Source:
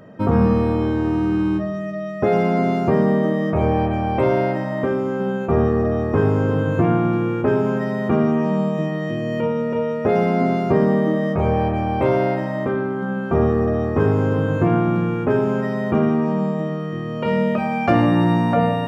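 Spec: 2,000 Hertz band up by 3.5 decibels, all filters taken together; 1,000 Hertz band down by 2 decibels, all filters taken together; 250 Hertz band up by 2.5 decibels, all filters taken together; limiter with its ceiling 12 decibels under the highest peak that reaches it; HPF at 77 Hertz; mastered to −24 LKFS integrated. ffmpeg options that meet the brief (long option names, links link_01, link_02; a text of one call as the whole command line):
ffmpeg -i in.wav -af "highpass=77,equalizer=frequency=250:width_type=o:gain=3.5,equalizer=frequency=1000:width_type=o:gain=-4.5,equalizer=frequency=2000:width_type=o:gain=5.5,volume=-1dB,alimiter=limit=-15.5dB:level=0:latency=1" out.wav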